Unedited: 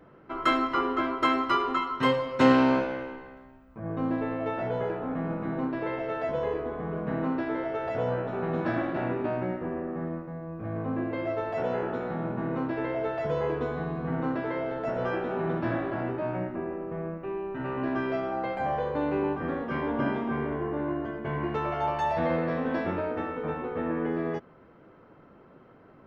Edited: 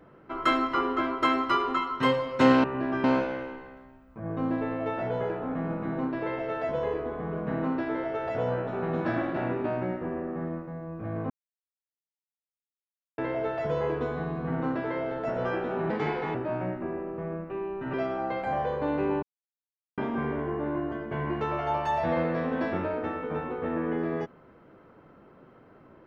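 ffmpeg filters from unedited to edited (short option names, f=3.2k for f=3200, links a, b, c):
-filter_complex "[0:a]asplit=10[a][b][c][d][e][f][g][h][i][j];[a]atrim=end=2.642[k];[b]atrim=start=17.668:end=18.072[l];[c]atrim=start=2.638:end=10.9,asetpts=PTS-STARTPTS,afade=t=out:st=8.258:d=0.004:c=hsin[m];[d]atrim=start=10.9:end=12.78,asetpts=PTS-STARTPTS,volume=0[n];[e]atrim=start=12.78:end=15.504,asetpts=PTS-STARTPTS,afade=t=in:d=0.004:c=hsin[o];[f]atrim=start=15.5:end=16.08,asetpts=PTS-STARTPTS,asetrate=57330,aresample=44100,atrim=end_sample=19675,asetpts=PTS-STARTPTS[p];[g]atrim=start=16.076:end=17.672[q];[h]atrim=start=18.068:end=19.36,asetpts=PTS-STARTPTS,afade=t=out:st=1.288:d=0.004:c=hsin[r];[i]atrim=start=19.36:end=20.11,asetpts=PTS-STARTPTS,volume=0[s];[j]atrim=start=20.11,asetpts=PTS-STARTPTS,afade=t=in:d=0.004:c=hsin[t];[k][l]acrossfade=d=0.004:c1=hsin:c2=hsin[u];[m][n][o]concat=n=3:v=0:a=1[v];[u][v]acrossfade=d=0.004:c1=hsin:c2=hsin[w];[w][p]acrossfade=d=0.004:c1=hsin:c2=hsin[x];[x][q]acrossfade=d=0.004:c1=hsin:c2=hsin[y];[r][s][t]concat=n=3:v=0:a=1[z];[y][z]acrossfade=d=0.004:c1=hsin:c2=hsin"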